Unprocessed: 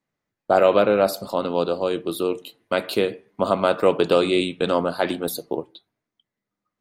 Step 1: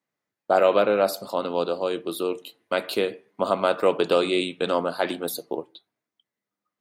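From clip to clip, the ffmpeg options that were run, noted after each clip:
-af "highpass=f=270:p=1,volume=-1.5dB"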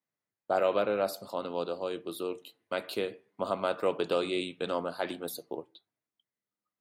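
-af "equalizer=f=99:t=o:w=0.82:g=6,volume=-8.5dB"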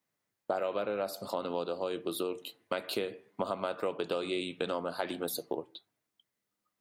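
-af "acompressor=threshold=-37dB:ratio=6,volume=7dB"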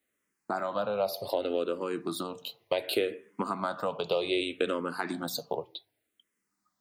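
-filter_complex "[0:a]asplit=2[a][b];[b]afreqshift=-0.66[c];[a][c]amix=inputs=2:normalize=1,volume=6.5dB"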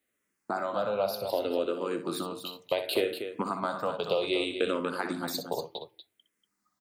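-af "aecho=1:1:61.22|239.1:0.316|0.355"

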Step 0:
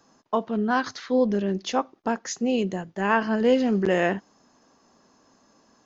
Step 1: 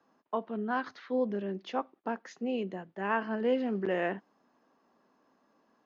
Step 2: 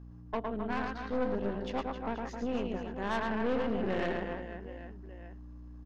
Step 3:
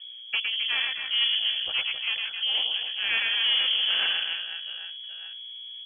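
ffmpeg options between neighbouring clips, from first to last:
-filter_complex "[0:a]acrossover=split=170 3600:gain=0.2 1 0.0891[a][b][c];[a][b][c]amix=inputs=3:normalize=0,volume=-8dB"
-af "aeval=exprs='val(0)+0.00631*(sin(2*PI*60*n/s)+sin(2*PI*2*60*n/s)/2+sin(2*PI*3*60*n/s)/3+sin(2*PI*4*60*n/s)/4+sin(2*PI*5*60*n/s)/5)':c=same,aecho=1:1:110|264|479.6|781.4|1204:0.631|0.398|0.251|0.158|0.1,aeval=exprs='(tanh(25.1*val(0)+0.75)-tanh(0.75))/25.1':c=same,volume=1.5dB"
-af "lowpass=f=2.9k:t=q:w=0.5098,lowpass=f=2.9k:t=q:w=0.6013,lowpass=f=2.9k:t=q:w=0.9,lowpass=f=2.9k:t=q:w=2.563,afreqshift=-3400,volume=6.5dB"

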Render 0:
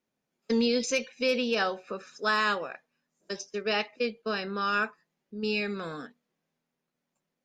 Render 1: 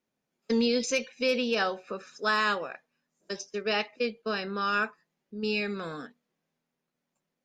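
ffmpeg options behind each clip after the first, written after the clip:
-af anull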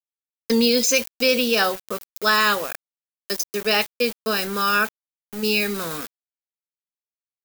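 -af "aeval=exprs='val(0)*gte(abs(val(0)),0.01)':c=same,aemphasis=mode=production:type=50fm,volume=7dB"

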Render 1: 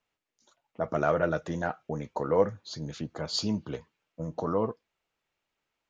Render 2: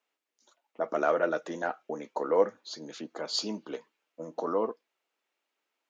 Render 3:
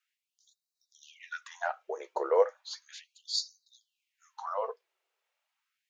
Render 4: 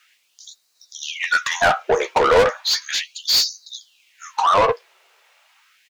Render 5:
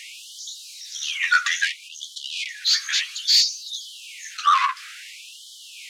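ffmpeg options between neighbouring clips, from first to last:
-af "highpass=f=260:w=0.5412,highpass=f=260:w=1.3066"
-af "afftfilt=real='re*gte(b*sr/1024,320*pow(3800/320,0.5+0.5*sin(2*PI*0.35*pts/sr)))':imag='im*gte(b*sr/1024,320*pow(3800/320,0.5+0.5*sin(2*PI*0.35*pts/sr)))':win_size=1024:overlap=0.75"
-filter_complex "[0:a]asplit=2[a][b];[b]highpass=f=720:p=1,volume=29dB,asoftclip=type=tanh:threshold=-12dB[c];[a][c]amix=inputs=2:normalize=0,lowpass=f=6.1k:p=1,volume=-6dB,asplit=2[d][e];[e]adelay=13,volume=-12dB[f];[d][f]amix=inputs=2:normalize=0,volume=5dB"
-af "aeval=exprs='val(0)+0.5*0.0237*sgn(val(0))':c=same,lowpass=8.7k,afftfilt=real='re*gte(b*sr/1024,990*pow(3000/990,0.5+0.5*sin(2*PI*0.59*pts/sr)))':imag='im*gte(b*sr/1024,990*pow(3000/990,0.5+0.5*sin(2*PI*0.59*pts/sr)))':win_size=1024:overlap=0.75"

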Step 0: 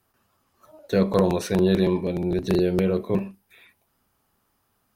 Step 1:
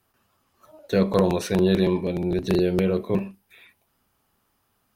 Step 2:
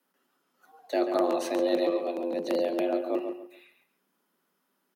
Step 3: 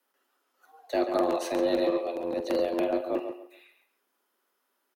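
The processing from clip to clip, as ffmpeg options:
-af "equalizer=f=2.9k:w=1.5:g=2.5"
-filter_complex "[0:a]afreqshift=160,asplit=2[a][b];[b]adelay=138,lowpass=f=3.1k:p=1,volume=-7dB,asplit=2[c][d];[d]adelay=138,lowpass=f=3.1k:p=1,volume=0.27,asplit=2[e][f];[f]adelay=138,lowpass=f=3.1k:p=1,volume=0.27[g];[a][c][e][g]amix=inputs=4:normalize=0,volume=-6.5dB"
-filter_complex "[0:a]asplit=2[a][b];[b]adelay=47,volume=-13dB[c];[a][c]amix=inputs=2:normalize=0,acrossover=split=290[d][e];[d]acrusher=bits=5:mix=0:aa=0.5[f];[f][e]amix=inputs=2:normalize=0"

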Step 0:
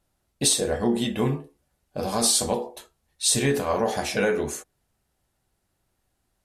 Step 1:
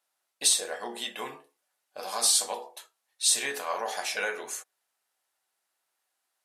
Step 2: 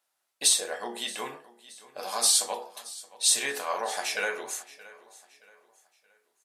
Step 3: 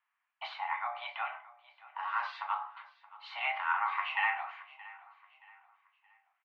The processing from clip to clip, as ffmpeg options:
-af "highpass=860,volume=-1.5dB"
-af "aecho=1:1:624|1248|1872:0.106|0.0403|0.0153,volume=1dB"
-filter_complex "[0:a]asplit=2[a][b];[b]adelay=29,volume=-13dB[c];[a][c]amix=inputs=2:normalize=0,highpass=f=300:t=q:w=0.5412,highpass=f=300:t=q:w=1.307,lowpass=f=2.4k:t=q:w=0.5176,lowpass=f=2.4k:t=q:w=0.7071,lowpass=f=2.4k:t=q:w=1.932,afreqshift=360"

